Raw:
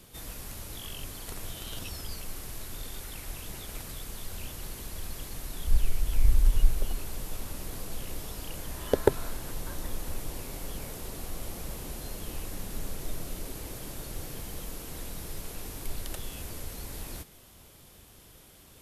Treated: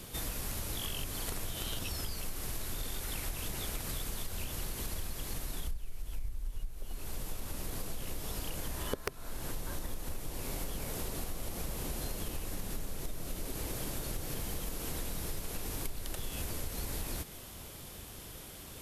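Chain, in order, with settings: integer overflow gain 5.5 dB; compression 16:1, threshold -39 dBFS, peak gain reduction 27.5 dB; trim +6.5 dB

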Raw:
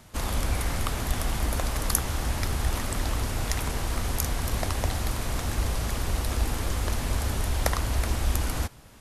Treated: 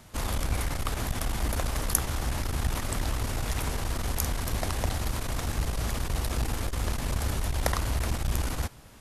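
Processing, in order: transformer saturation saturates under 420 Hz

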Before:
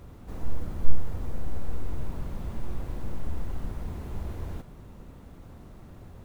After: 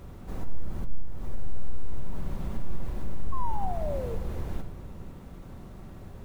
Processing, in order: compression 8:1, threshold -28 dBFS, peak gain reduction 20 dB; painted sound fall, 3.32–4.16 s, 440–1100 Hz -37 dBFS; on a send: reverberation RT60 1.8 s, pre-delay 5 ms, DRR 9 dB; on the sum: trim +2 dB

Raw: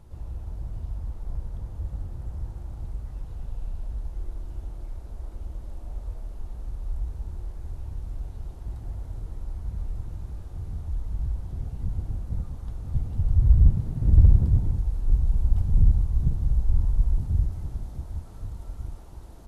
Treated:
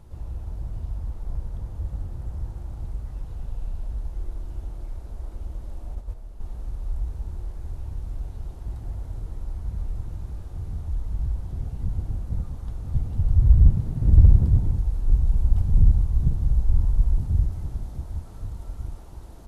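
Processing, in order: 5.95–6.41 s: gate -31 dBFS, range -6 dB; trim +2 dB

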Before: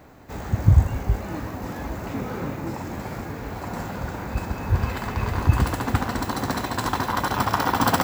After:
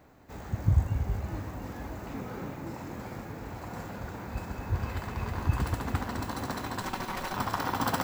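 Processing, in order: 6.81–7.33 s: comb filter that takes the minimum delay 5.3 ms; two-band feedback delay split 320 Hz, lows 234 ms, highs 714 ms, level -8 dB; trim -9 dB

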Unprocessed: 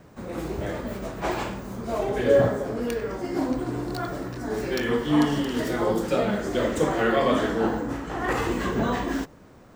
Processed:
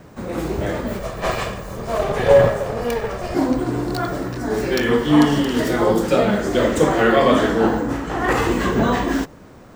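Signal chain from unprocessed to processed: 0.99–3.35 s: comb filter that takes the minimum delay 1.7 ms; trim +7 dB

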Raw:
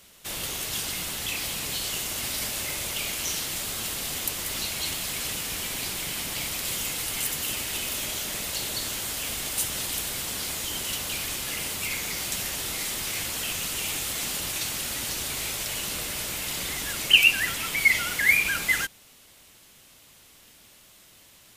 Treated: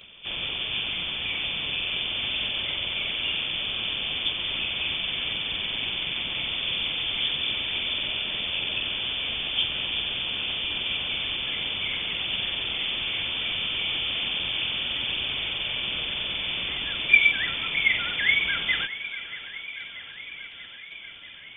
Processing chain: knee-point frequency compression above 2.2 kHz 4:1; gate with hold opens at -40 dBFS; upward compressor, threshold -40 dBFS; thinning echo 636 ms, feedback 71%, high-pass 300 Hz, level -14.5 dB; modulated delay 522 ms, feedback 78%, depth 69 cents, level -22.5 dB; trim -2.5 dB

